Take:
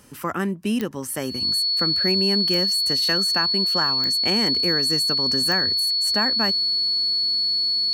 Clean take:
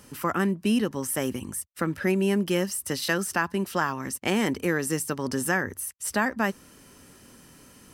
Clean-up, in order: de-click; notch 4400 Hz, Q 30

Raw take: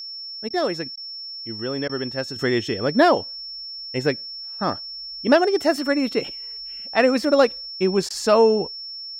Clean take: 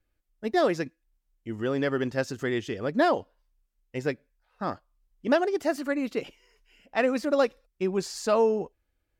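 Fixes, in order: notch 5400 Hz, Q 30; interpolate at 0.49/0.96/1.88/8.09, 12 ms; gain correction -7 dB, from 2.36

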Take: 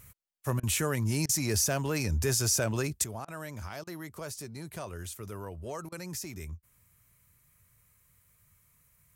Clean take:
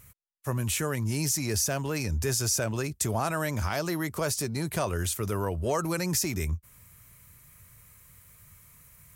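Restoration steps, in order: clip repair -18 dBFS; interpolate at 0.6/1.26/3.25/3.84/5.89, 30 ms; gain 0 dB, from 3.04 s +11 dB

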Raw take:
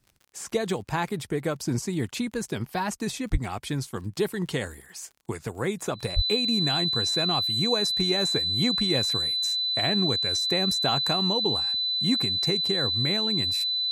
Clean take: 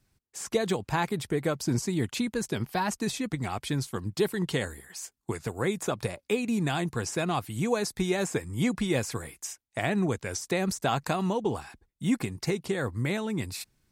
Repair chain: de-click; notch 4000 Hz, Q 30; 3.31–3.43 HPF 140 Hz 24 dB/oct; 6.15–6.27 HPF 140 Hz 24 dB/oct

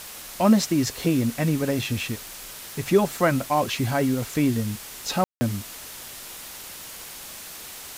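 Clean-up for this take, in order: room tone fill 5.24–5.41; noise print and reduce 30 dB

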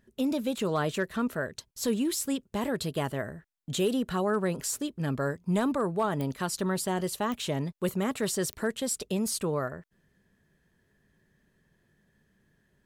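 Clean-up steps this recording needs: clip repair -19 dBFS; de-click

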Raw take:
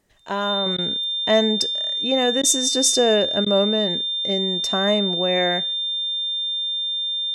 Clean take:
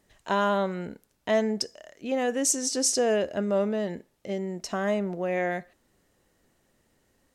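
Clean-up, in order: notch 3600 Hz, Q 30; interpolate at 0.77/2.42/3.45, 12 ms; gain correction -6 dB, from 0.66

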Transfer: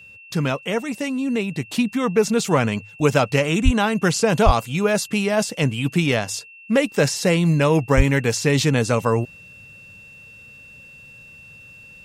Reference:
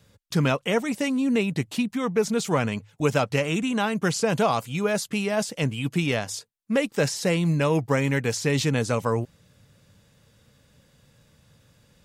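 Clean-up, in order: notch 2700 Hz, Q 30; 1.7 gain correction -5 dB; 3.64–3.76 HPF 140 Hz 24 dB/oct; 4.45–4.57 HPF 140 Hz 24 dB/oct; 7.96–8.08 HPF 140 Hz 24 dB/oct

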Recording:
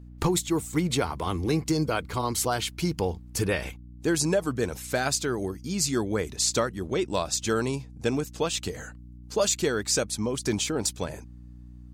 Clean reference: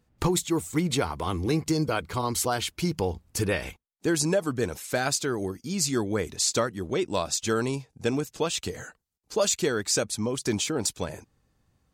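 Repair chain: de-hum 60.4 Hz, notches 5

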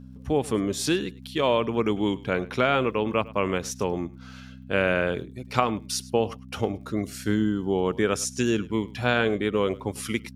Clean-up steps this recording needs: de-click; de-hum 64.1 Hz, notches 4; inverse comb 0.103 s -20.5 dB

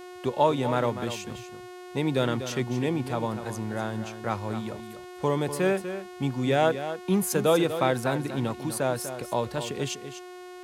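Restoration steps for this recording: de-hum 361.8 Hz, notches 37; inverse comb 0.245 s -10.5 dB

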